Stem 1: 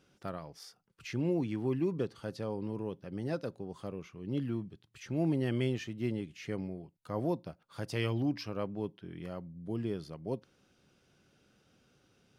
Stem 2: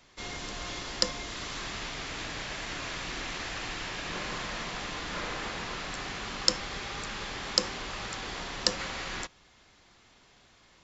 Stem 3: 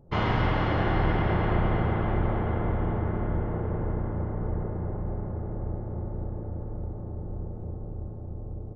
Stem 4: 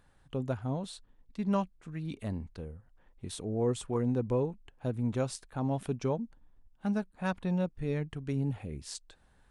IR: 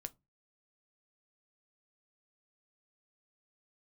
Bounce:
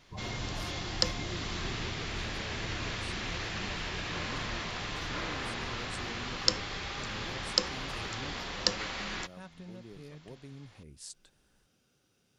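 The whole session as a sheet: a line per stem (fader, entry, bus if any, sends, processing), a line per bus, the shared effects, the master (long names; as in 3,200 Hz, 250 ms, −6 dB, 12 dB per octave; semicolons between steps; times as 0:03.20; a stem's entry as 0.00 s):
−6.0 dB, 0.00 s, bus A, no send, no processing
−2.0 dB, 0.00 s, no bus, no send, low-pass filter 4,400 Hz 12 dB per octave
−14.0 dB, 0.00 s, no bus, no send, spectral peaks only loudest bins 16
−8.5 dB, 2.15 s, bus A, no send, no processing
bus A: 0.0 dB, downward compressor 2.5 to 1, threshold −48 dBFS, peak gain reduction 11.5 dB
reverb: not used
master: high-shelf EQ 5,100 Hz +10.5 dB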